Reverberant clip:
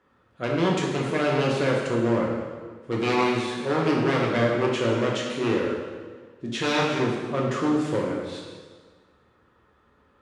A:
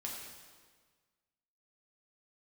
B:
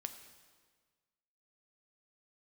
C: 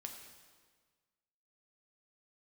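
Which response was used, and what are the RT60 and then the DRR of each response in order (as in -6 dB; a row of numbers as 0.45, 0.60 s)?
A; 1.6, 1.6, 1.6 s; -3.0, 7.0, 2.5 dB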